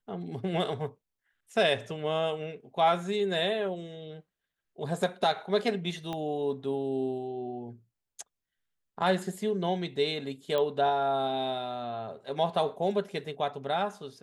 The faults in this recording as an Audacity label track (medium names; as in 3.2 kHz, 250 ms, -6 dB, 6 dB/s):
6.130000	6.130000	pop -22 dBFS
10.580000	10.580000	pop -18 dBFS